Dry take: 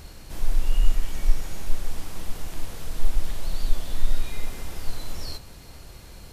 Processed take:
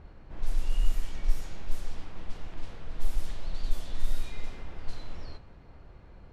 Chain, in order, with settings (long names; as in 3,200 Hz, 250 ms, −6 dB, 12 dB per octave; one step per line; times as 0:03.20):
low-pass that shuts in the quiet parts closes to 1,500 Hz, open at −10 dBFS
level −6 dB